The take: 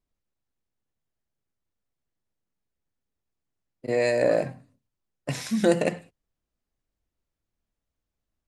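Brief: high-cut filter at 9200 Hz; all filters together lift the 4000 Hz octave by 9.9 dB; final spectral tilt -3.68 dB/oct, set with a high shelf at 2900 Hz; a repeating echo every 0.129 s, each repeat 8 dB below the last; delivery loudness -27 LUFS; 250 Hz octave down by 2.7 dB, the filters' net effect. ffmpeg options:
-af "lowpass=9.2k,equalizer=f=250:t=o:g=-4,highshelf=f=2.9k:g=5.5,equalizer=f=4k:t=o:g=7.5,aecho=1:1:129|258|387|516|645:0.398|0.159|0.0637|0.0255|0.0102,volume=-2.5dB"

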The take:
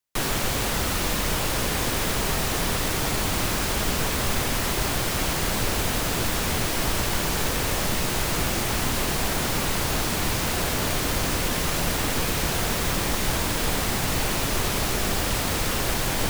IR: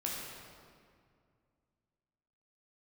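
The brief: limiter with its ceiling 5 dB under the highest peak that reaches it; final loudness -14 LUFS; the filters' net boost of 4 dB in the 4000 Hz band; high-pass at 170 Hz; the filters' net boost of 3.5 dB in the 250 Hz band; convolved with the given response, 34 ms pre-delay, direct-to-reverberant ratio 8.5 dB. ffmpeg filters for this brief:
-filter_complex "[0:a]highpass=170,equalizer=f=250:t=o:g=6,equalizer=f=4k:t=o:g=5,alimiter=limit=-16dB:level=0:latency=1,asplit=2[a][b];[1:a]atrim=start_sample=2205,adelay=34[c];[b][c]afir=irnorm=-1:irlink=0,volume=-11.5dB[d];[a][d]amix=inputs=2:normalize=0,volume=10dB"

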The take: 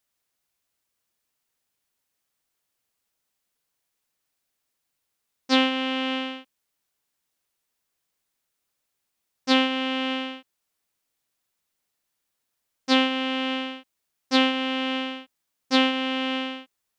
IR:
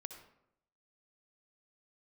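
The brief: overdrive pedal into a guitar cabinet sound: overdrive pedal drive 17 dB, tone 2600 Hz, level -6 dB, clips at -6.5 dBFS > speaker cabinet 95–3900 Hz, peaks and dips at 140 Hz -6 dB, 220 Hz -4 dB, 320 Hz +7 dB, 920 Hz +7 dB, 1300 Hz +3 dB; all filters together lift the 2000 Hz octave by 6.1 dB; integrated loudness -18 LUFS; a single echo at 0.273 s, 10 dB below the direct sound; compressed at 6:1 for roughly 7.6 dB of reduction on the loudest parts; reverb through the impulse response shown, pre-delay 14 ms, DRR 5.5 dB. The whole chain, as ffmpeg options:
-filter_complex "[0:a]equalizer=f=2k:t=o:g=7,acompressor=threshold=-20dB:ratio=6,aecho=1:1:273:0.316,asplit=2[a][b];[1:a]atrim=start_sample=2205,adelay=14[c];[b][c]afir=irnorm=-1:irlink=0,volume=-1.5dB[d];[a][d]amix=inputs=2:normalize=0,asplit=2[e][f];[f]highpass=f=720:p=1,volume=17dB,asoftclip=type=tanh:threshold=-6.5dB[g];[e][g]amix=inputs=2:normalize=0,lowpass=f=2.6k:p=1,volume=-6dB,highpass=95,equalizer=f=140:t=q:w=4:g=-6,equalizer=f=220:t=q:w=4:g=-4,equalizer=f=320:t=q:w=4:g=7,equalizer=f=920:t=q:w=4:g=7,equalizer=f=1.3k:t=q:w=4:g=3,lowpass=f=3.9k:w=0.5412,lowpass=f=3.9k:w=1.3066,volume=2dB"

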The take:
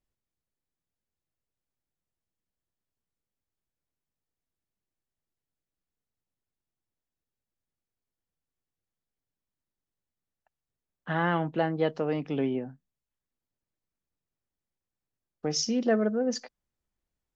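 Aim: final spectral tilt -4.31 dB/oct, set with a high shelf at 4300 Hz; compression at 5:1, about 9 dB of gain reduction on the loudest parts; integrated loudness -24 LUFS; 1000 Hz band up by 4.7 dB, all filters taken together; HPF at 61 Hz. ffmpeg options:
-af "highpass=61,equalizer=f=1k:t=o:g=6,highshelf=f=4.3k:g=3.5,acompressor=threshold=-29dB:ratio=5,volume=10dB"

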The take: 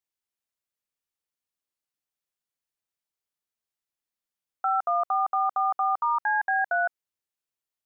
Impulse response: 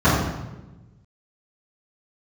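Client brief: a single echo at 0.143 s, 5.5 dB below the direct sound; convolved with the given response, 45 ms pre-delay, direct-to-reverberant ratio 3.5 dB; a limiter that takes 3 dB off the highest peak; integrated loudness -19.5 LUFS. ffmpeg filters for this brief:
-filter_complex "[0:a]alimiter=limit=-21dB:level=0:latency=1,aecho=1:1:143:0.531,asplit=2[a][b];[1:a]atrim=start_sample=2205,adelay=45[c];[b][c]afir=irnorm=-1:irlink=0,volume=-27dB[d];[a][d]amix=inputs=2:normalize=0,volume=7.5dB"

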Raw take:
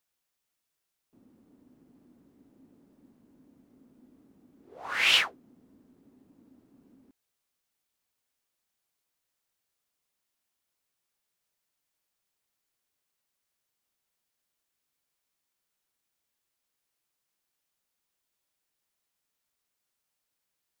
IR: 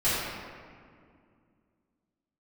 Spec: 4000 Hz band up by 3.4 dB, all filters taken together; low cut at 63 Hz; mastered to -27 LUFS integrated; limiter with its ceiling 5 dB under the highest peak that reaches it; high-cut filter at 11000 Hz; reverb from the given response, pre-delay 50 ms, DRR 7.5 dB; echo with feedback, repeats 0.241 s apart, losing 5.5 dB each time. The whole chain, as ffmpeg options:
-filter_complex "[0:a]highpass=63,lowpass=11k,equalizer=f=4k:t=o:g=5,alimiter=limit=-11.5dB:level=0:latency=1,aecho=1:1:241|482|723|964|1205|1446|1687:0.531|0.281|0.149|0.079|0.0419|0.0222|0.0118,asplit=2[a][b];[1:a]atrim=start_sample=2205,adelay=50[c];[b][c]afir=irnorm=-1:irlink=0,volume=-21dB[d];[a][d]amix=inputs=2:normalize=0,volume=-2.5dB"

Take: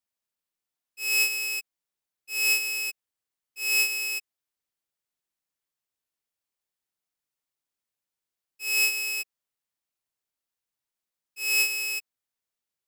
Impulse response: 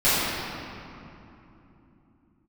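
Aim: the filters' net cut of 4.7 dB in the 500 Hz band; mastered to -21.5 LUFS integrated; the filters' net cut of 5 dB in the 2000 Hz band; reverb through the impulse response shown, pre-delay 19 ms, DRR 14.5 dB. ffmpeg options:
-filter_complex "[0:a]equalizer=f=500:t=o:g=-6,equalizer=f=2k:t=o:g=-7.5,asplit=2[a][b];[1:a]atrim=start_sample=2205,adelay=19[c];[b][c]afir=irnorm=-1:irlink=0,volume=-34.5dB[d];[a][d]amix=inputs=2:normalize=0,volume=6dB"

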